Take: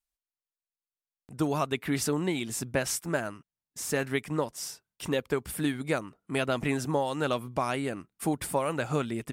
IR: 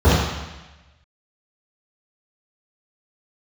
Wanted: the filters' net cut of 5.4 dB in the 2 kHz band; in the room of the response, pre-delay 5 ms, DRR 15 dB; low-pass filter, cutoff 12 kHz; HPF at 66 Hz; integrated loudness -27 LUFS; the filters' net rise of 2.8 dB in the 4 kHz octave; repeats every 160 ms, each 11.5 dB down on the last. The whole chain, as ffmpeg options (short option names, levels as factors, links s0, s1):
-filter_complex "[0:a]highpass=66,lowpass=12000,equalizer=f=2000:t=o:g=-9,equalizer=f=4000:t=o:g=6.5,aecho=1:1:160|320|480:0.266|0.0718|0.0194,asplit=2[s0][s1];[1:a]atrim=start_sample=2205,adelay=5[s2];[s1][s2]afir=irnorm=-1:irlink=0,volume=0.01[s3];[s0][s3]amix=inputs=2:normalize=0,volume=1.5"